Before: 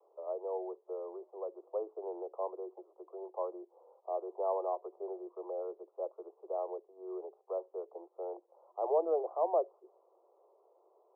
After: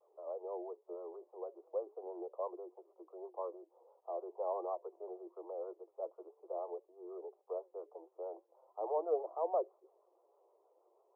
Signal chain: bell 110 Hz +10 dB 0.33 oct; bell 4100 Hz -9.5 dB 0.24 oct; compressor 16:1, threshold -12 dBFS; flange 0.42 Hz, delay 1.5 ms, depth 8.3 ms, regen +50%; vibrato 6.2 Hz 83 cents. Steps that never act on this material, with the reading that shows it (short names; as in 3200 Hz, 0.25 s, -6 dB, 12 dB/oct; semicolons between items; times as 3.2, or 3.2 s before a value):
bell 110 Hz: input band starts at 300 Hz; bell 4100 Hz: input band ends at 1300 Hz; compressor, threshold -12 dBFS: input peak -19.5 dBFS